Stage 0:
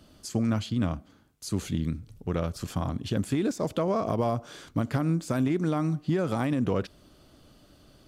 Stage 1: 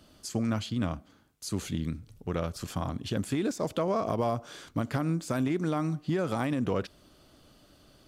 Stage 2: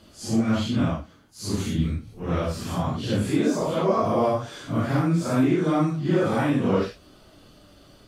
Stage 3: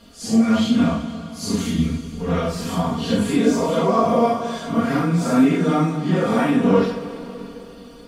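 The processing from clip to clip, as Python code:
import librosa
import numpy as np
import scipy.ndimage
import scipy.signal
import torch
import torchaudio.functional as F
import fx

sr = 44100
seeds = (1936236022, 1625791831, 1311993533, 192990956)

y1 = fx.low_shelf(x, sr, hz=400.0, db=-4.0)
y2 = fx.phase_scramble(y1, sr, seeds[0], window_ms=200)
y2 = fx.high_shelf(y2, sr, hz=6200.0, db=-5.0)
y2 = y2 * librosa.db_to_amplitude(7.0)
y3 = y2 + 0.87 * np.pad(y2, (int(4.3 * sr / 1000.0), 0))[:len(y2)]
y3 = fx.rev_plate(y3, sr, seeds[1], rt60_s=3.4, hf_ratio=0.95, predelay_ms=0, drr_db=8.5)
y3 = y3 * librosa.db_to_amplitude(2.0)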